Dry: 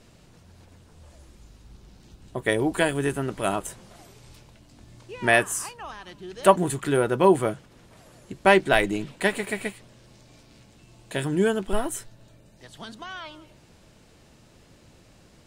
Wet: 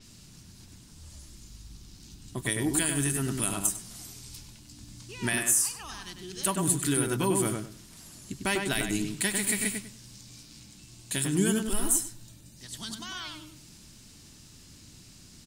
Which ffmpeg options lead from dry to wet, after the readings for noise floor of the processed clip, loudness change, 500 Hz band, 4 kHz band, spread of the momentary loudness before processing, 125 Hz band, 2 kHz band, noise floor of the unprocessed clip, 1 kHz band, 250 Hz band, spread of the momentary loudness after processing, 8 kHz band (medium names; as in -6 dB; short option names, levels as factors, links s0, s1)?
-52 dBFS, -4.5 dB, -11.5 dB, -0.5 dB, 20 LU, -1.0 dB, -7.5 dB, -55 dBFS, -12.0 dB, -2.5 dB, 21 LU, +9.0 dB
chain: -filter_complex "[0:a]firequalizer=gain_entry='entry(280,0);entry(510,-14);entry(1000,-6);entry(5000,10)':delay=0.05:min_phase=1,alimiter=limit=0.15:level=0:latency=1:release=207,asplit=2[s0][s1];[s1]adelay=99,lowpass=f=2300:p=1,volume=0.668,asplit=2[s2][s3];[s3]adelay=99,lowpass=f=2300:p=1,volume=0.25,asplit=2[s4][s5];[s5]adelay=99,lowpass=f=2300:p=1,volume=0.25,asplit=2[s6][s7];[s7]adelay=99,lowpass=f=2300:p=1,volume=0.25[s8];[s2][s4][s6][s8]amix=inputs=4:normalize=0[s9];[s0][s9]amix=inputs=2:normalize=0,adynamicequalizer=threshold=0.00501:dfrequency=7200:dqfactor=0.7:tfrequency=7200:tqfactor=0.7:attack=5:release=100:ratio=0.375:range=3:mode=boostabove:tftype=highshelf"